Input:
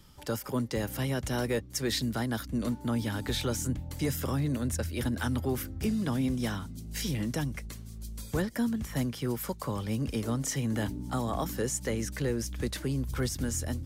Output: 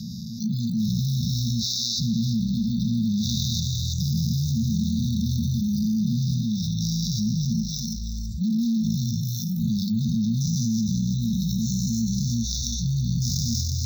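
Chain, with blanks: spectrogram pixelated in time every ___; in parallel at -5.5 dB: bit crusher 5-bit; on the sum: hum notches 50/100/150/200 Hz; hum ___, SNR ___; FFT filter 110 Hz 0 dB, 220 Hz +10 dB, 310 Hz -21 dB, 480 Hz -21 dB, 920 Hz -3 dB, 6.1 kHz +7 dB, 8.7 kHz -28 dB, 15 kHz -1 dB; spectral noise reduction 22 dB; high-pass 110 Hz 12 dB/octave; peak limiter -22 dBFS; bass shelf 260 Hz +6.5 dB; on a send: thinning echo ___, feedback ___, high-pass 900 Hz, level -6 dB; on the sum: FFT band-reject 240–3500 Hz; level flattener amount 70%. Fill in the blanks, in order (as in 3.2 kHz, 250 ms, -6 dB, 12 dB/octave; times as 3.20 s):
400 ms, 50 Hz, 34 dB, 330 ms, 29%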